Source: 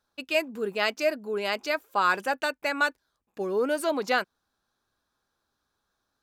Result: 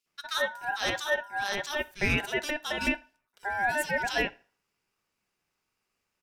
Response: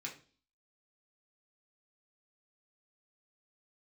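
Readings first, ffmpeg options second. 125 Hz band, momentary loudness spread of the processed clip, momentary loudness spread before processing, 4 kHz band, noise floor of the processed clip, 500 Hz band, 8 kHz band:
n/a, 6 LU, 5 LU, +0.5 dB, -82 dBFS, -6.5 dB, +2.5 dB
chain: -filter_complex "[0:a]acrossover=split=2000[a][b];[a]adelay=60[c];[c][b]amix=inputs=2:normalize=0,asplit=2[d][e];[1:a]atrim=start_sample=2205,highshelf=f=4k:g=9.5[f];[e][f]afir=irnorm=-1:irlink=0,volume=-11dB[g];[d][g]amix=inputs=2:normalize=0,aeval=exprs='val(0)*sin(2*PI*1200*n/s)':c=same"

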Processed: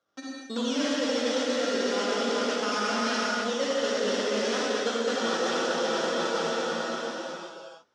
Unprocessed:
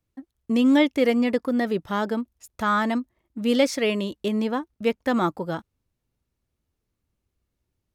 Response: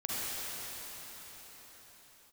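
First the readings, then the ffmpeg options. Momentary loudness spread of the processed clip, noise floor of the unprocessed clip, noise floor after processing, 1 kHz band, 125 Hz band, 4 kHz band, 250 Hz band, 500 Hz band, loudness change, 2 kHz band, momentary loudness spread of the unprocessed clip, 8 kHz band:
8 LU, -80 dBFS, -47 dBFS, -1.0 dB, -9.5 dB, +4.5 dB, -8.0 dB, -0.5 dB, -4.0 dB, +0.5 dB, 12 LU, +8.0 dB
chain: -filter_complex "[0:a]acrossover=split=480|3000[a][b][c];[b]acompressor=threshold=-29dB:ratio=6[d];[a][d][c]amix=inputs=3:normalize=0,acrusher=samples=16:mix=1:aa=0.000001:lfo=1:lforange=9.6:lforate=1.4,highpass=370,equalizer=f=540:t=q:w=4:g=6,equalizer=f=1.4k:t=q:w=4:g=9,equalizer=f=2.3k:t=q:w=4:g=-4,equalizer=f=3.4k:t=q:w=4:g=7,equalizer=f=5.6k:t=q:w=4:g=10,lowpass=f=7k:w=0.5412,lowpass=f=7k:w=1.3066[e];[1:a]atrim=start_sample=2205[f];[e][f]afir=irnorm=-1:irlink=0,areverse,acompressor=threshold=-29dB:ratio=12,areverse,volume=5dB"

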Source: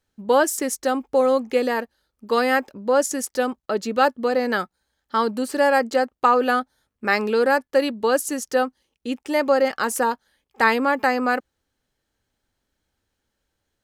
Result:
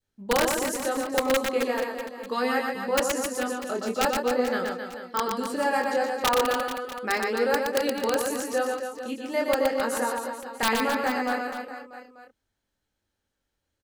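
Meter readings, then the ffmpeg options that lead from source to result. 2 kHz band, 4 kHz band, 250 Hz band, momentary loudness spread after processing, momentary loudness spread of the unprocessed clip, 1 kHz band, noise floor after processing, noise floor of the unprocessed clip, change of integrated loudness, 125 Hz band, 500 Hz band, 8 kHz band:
-4.5 dB, +0.5 dB, -4.5 dB, 8 LU, 8 LU, -5.5 dB, -81 dBFS, -79 dBFS, -5.0 dB, n/a, -5.0 dB, -2.0 dB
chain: -af "adynamicequalizer=threshold=0.0355:dfrequency=1200:dqfactor=1.1:tfrequency=1200:tqfactor=1.1:attack=5:release=100:ratio=0.375:range=2:mode=cutabove:tftype=bell,flanger=delay=20:depth=6.3:speed=0.39,aeval=exprs='(mod(3.76*val(0)+1,2)-1)/3.76':c=same,aecho=1:1:120|264|436.8|644.2|893:0.631|0.398|0.251|0.158|0.1,volume=-3.5dB"

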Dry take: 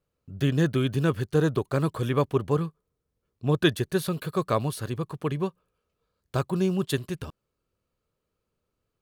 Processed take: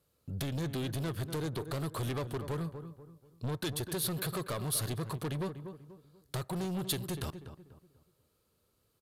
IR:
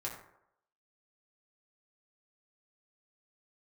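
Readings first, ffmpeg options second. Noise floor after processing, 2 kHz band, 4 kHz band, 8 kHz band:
-75 dBFS, -10.0 dB, -4.5 dB, +3.5 dB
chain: -filter_complex "[0:a]highpass=42,acompressor=threshold=-30dB:ratio=10,asoftclip=type=hard:threshold=-29.5dB,asplit=2[a][b];[b]adelay=243,lowpass=f=1.5k:p=1,volume=-13dB,asplit=2[c][d];[d]adelay=243,lowpass=f=1.5k:p=1,volume=0.36,asplit=2[e][f];[f]adelay=243,lowpass=f=1.5k:p=1,volume=0.36,asplit=2[g][h];[h]adelay=243,lowpass=f=1.5k:p=1,volume=0.36[i];[a][c][e][g][i]amix=inputs=5:normalize=0,asoftclip=type=tanh:threshold=-36dB,asplit=2[j][k];[1:a]atrim=start_sample=2205[l];[k][l]afir=irnorm=-1:irlink=0,volume=-22.5dB[m];[j][m]amix=inputs=2:normalize=0,aresample=32000,aresample=44100,aexciter=amount=1:drive=9.4:freq=3.5k,volume=4dB"

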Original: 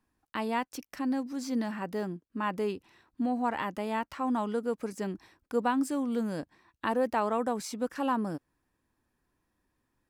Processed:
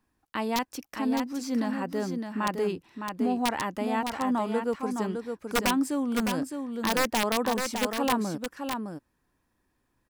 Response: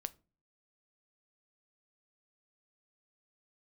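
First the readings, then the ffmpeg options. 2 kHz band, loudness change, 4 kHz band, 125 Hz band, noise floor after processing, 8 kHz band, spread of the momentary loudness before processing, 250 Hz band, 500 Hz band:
+6.0 dB, +3.0 dB, +11.5 dB, +3.5 dB, -75 dBFS, +10.0 dB, 9 LU, +3.5 dB, +2.5 dB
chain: -af "aeval=exprs='(mod(10*val(0)+1,2)-1)/10':c=same,aecho=1:1:611:0.501,volume=2.5dB"

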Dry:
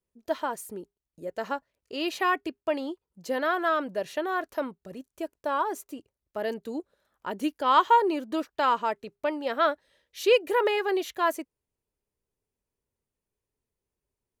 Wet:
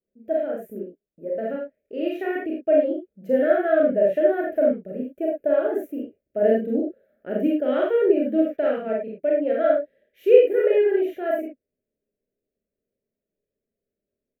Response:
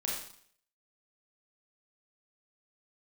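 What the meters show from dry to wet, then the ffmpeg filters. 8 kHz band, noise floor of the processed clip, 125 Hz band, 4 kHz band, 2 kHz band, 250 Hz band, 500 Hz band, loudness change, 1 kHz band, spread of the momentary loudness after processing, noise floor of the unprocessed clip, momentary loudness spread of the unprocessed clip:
under -15 dB, under -85 dBFS, n/a, under -10 dB, -2.5 dB, +8.5 dB, +10.0 dB, +5.5 dB, -8.5 dB, 14 LU, under -85 dBFS, 18 LU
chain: -filter_complex "[0:a]firequalizer=gain_entry='entry(100,0);entry(200,11);entry(350,10);entry(640,13);entry(970,-27);entry(1500,1);entry(2400,-1);entry(4300,-22);entry(8800,-18);entry(14000,-1)':delay=0.05:min_phase=1,dynaudnorm=f=310:g=17:m=11.5dB[a];[1:a]atrim=start_sample=2205,afade=t=out:st=0.16:d=0.01,atrim=end_sample=7497[b];[a][b]afir=irnorm=-1:irlink=0,volume=-8dB"

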